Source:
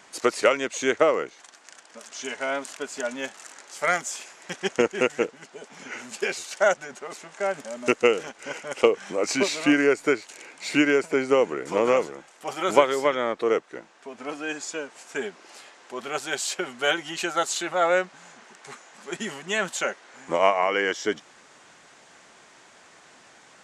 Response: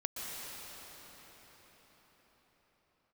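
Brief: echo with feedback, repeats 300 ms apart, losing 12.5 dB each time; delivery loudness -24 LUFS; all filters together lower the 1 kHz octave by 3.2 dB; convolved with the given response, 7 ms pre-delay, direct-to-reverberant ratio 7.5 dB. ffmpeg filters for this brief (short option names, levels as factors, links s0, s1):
-filter_complex "[0:a]equalizer=f=1000:t=o:g=-4.5,aecho=1:1:300|600|900:0.237|0.0569|0.0137,asplit=2[s0][s1];[1:a]atrim=start_sample=2205,adelay=7[s2];[s1][s2]afir=irnorm=-1:irlink=0,volume=0.282[s3];[s0][s3]amix=inputs=2:normalize=0,volume=1.26"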